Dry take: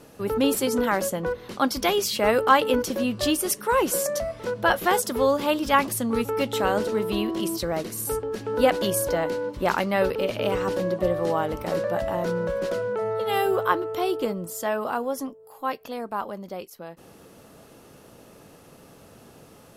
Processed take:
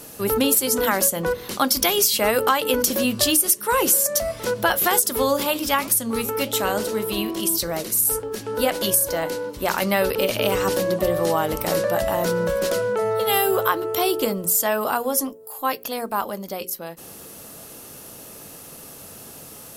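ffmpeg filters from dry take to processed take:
-filter_complex "[0:a]asettb=1/sr,asplit=3[a][b][c];[a]atrim=end=5.434[d];[b]atrim=start=5.43:end=9.82,asetpts=PTS-STARTPTS,afade=t=in:d=0.004:c=qsin,afade=t=out:st=4.386:d=0.004:c=qsin,flanger=delay=6.6:depth=4.6:regen=-83:speed=1.8:shape=triangular[e];[c]atrim=start=9.816[f];[d][e]acrossfade=d=0.004:c1=hsin:c2=qsin[g];[g][f]acrossfade=d=0.004:c1=qsin:c2=hsin,aemphasis=mode=production:type=75kf,bandreject=f=60:t=h:w=6,bandreject=f=120:t=h:w=6,bandreject=f=180:t=h:w=6,bandreject=f=240:t=h:w=6,bandreject=f=300:t=h:w=6,bandreject=f=360:t=h:w=6,bandreject=f=420:t=h:w=6,bandreject=f=480:t=h:w=6,bandreject=f=540:t=h:w=6,acompressor=threshold=-20dB:ratio=6,volume=4.5dB"

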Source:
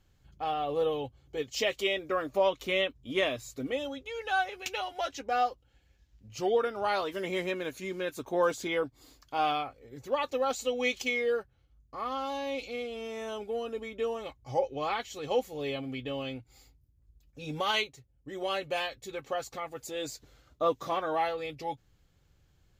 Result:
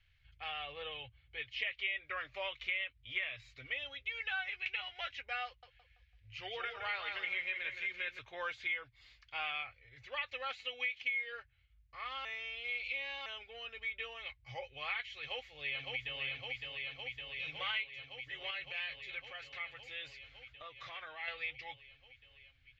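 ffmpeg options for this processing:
-filter_complex "[0:a]asettb=1/sr,asplit=3[a][b][c];[a]atrim=end=0.724[d];[b]atrim=start=0.72:end=2.17,asetpts=PTS-STARTPTS,afade=t=in:d=0.004:c=qsin,afade=t=out:st=1.446:d=0.004:c=qsin,lowpass=4k[e];[c]atrim=start=2.166[f];[d][e]acrossfade=d=0.004:c1=hsin:c2=qsin[g];[g][f]acrossfade=d=0.004:c1=qsin:c2=hsin,asettb=1/sr,asplit=3[h][i][j];[h]atrim=end=5.464[k];[i]atrim=start=5.46:end=8.19,asetpts=PTS-STARTPTS,afade=t=in:d=0.004:c=qsin,afade=t=out:st=2.726:d=0.004:c=qsin,asplit=2[l][m];[m]adelay=167,lowpass=f=4.5k:p=1,volume=-7.5dB,asplit=2[n][o];[o]adelay=167,lowpass=f=4.5k:p=1,volume=0.37,asplit=2[p][q];[q]adelay=167,lowpass=f=4.5k:p=1,volume=0.37,asplit=2[r][s];[s]adelay=167,lowpass=f=4.5k:p=1,volume=0.37[t];[l][n][p][r][t]amix=inputs=5:normalize=0,atrim=end_sample=120393[u];[j]atrim=start=8.186[v];[k][u]acrossfade=d=0.004:c1=hsin:c2=qsin[w];[w][v]acrossfade=d=0.004:c1=qsin:c2=hsin,asettb=1/sr,asplit=3[x][y][z];[x]atrim=end=10.474[aa];[y]atrim=start=10.47:end=11.32,asetpts=PTS-STARTPTS,afade=t=in:d=0.004:c=qsin,afade=t=out:st=0.846:d=0.004:c=qsin,highpass=100[ab];[z]atrim=start=11.316[ac];[aa][ab]acrossfade=d=0.004:c1=hsin:c2=qsin[ad];[ad][ac]acrossfade=d=0.004:c1=qsin:c2=hsin,asplit=2[ae][af];[af]afade=t=in:st=15.16:d=0.01,afade=t=out:st=16.21:d=0.01,aecho=0:1:560|1120|1680|2240|2800|3360|3920|4480|5040|5600|6160|6720:0.630957|0.504766|0.403813|0.32305|0.25844|0.206752|0.165402|0.132321|0.105857|0.0846857|0.0677485|0.0541988[ag];[ae][ag]amix=inputs=2:normalize=0,asettb=1/sr,asplit=3[ah][ai][aj];[ah]atrim=end=18.504[ak];[ai]atrim=start=18.5:end=21.28,asetpts=PTS-STARTPTS,afade=t=in:d=0.004:c=qsin,afade=t=out:st=2.776:d=0.004:c=qsin,acompressor=threshold=-34dB:ratio=6:attack=3.2:release=140:knee=1:detection=peak[al];[aj]atrim=start=21.276[am];[ak][al]acrossfade=d=0.004:c1=hsin:c2=qsin[an];[an][am]acrossfade=d=0.004:c1=qsin:c2=hsin,asplit=3[ao][ap][aq];[ao]atrim=end=12.252[ar];[ap]atrim=start=12.248:end=13.262,asetpts=PTS-STARTPTS,areverse[as];[aq]atrim=start=13.258[at];[ar][as]acrossfade=d=0.004:c1=hsin:c2=hsin[au];[au][at]acrossfade=d=0.004:c1=hsin:c2=hsin,acrossover=split=3000[av][aw];[aw]acompressor=threshold=-49dB:ratio=4:attack=1:release=60[ax];[av][ax]amix=inputs=2:normalize=0,firequalizer=gain_entry='entry(110,0);entry(190,-27);entry(550,-12);entry(910,-9);entry(2100,14);entry(9200,-27)':delay=0.05:min_phase=1,acompressor=threshold=-29dB:ratio=6,volume=-5dB"

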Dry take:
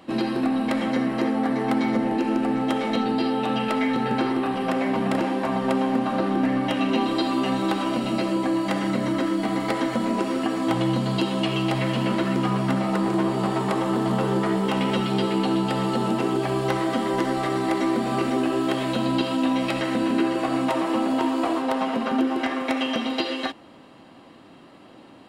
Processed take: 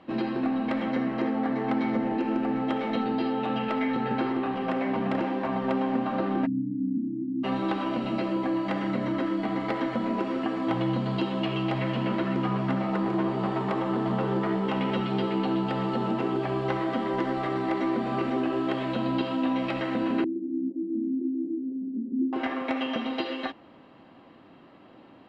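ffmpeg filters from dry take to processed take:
-filter_complex "[0:a]asplit=3[a][b][c];[a]afade=t=out:st=6.45:d=0.02[d];[b]asuperpass=centerf=180:order=20:qfactor=0.82,afade=t=in:st=6.45:d=0.02,afade=t=out:st=7.43:d=0.02[e];[c]afade=t=in:st=7.43:d=0.02[f];[d][e][f]amix=inputs=3:normalize=0,asettb=1/sr,asplit=3[g][h][i];[g]atrim=end=20.244[j];[h]atrim=start=20.24:end=22.33,asetpts=PTS-STARTPTS,afade=t=in:d=0.004:c=qsin,afade=t=out:st=2.086:d=0.004:c=qsin,asuperpass=centerf=260:order=8:qfactor=1.6[k];[i]atrim=start=22.326[l];[j][k]acrossfade=d=0.004:c1=hsin:c2=qsin[m];[m][l]acrossfade=d=0.004:c1=qsin:c2=hsin,lowpass=3.1k,volume=-4dB"

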